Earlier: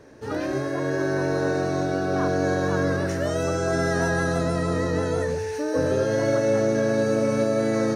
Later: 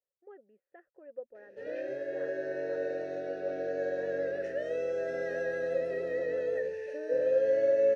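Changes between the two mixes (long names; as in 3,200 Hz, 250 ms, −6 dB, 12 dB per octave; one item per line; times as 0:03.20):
background: entry +1.35 s
master: add formant filter e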